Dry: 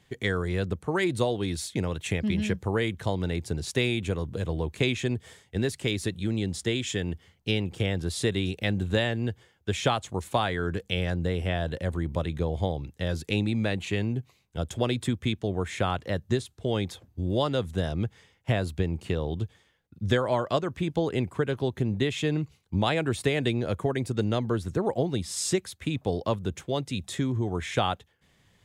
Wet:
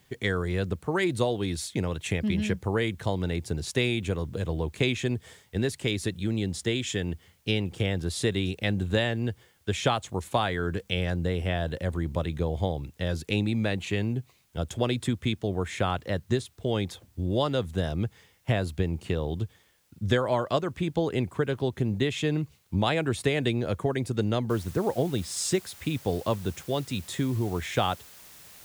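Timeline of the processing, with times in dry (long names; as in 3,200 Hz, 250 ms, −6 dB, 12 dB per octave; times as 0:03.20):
0:24.50: noise floor change −69 dB −50 dB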